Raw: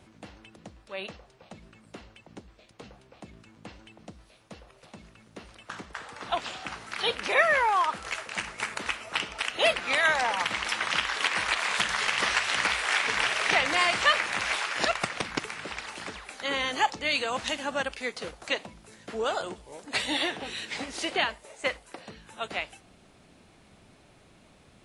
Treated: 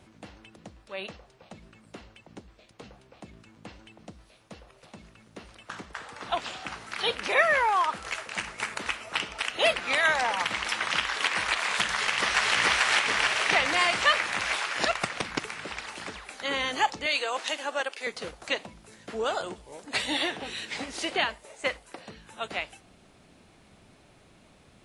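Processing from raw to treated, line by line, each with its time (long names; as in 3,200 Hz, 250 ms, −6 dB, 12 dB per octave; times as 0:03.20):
0:11.90–0:12.55: delay throw 440 ms, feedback 55%, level 0 dB
0:17.06–0:18.07: high-pass filter 340 Hz 24 dB per octave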